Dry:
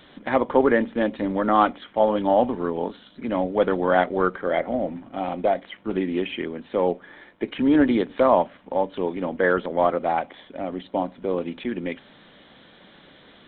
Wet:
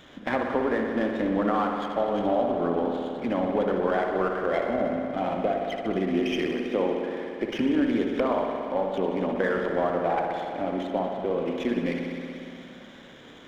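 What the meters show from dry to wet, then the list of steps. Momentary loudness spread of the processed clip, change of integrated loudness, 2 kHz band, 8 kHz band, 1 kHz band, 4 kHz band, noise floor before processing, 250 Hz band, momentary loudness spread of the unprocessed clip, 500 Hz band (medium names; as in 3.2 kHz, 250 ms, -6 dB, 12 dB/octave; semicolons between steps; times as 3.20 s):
6 LU, -3.5 dB, -3.5 dB, no reading, -4.5 dB, -1.0 dB, -52 dBFS, -2.0 dB, 12 LU, -3.0 dB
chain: band-stop 880 Hz, Q 23; compression, threshold -23 dBFS, peak gain reduction 10.5 dB; spring tank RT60 2.8 s, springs 58 ms, chirp 75 ms, DRR 1 dB; sliding maximum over 3 samples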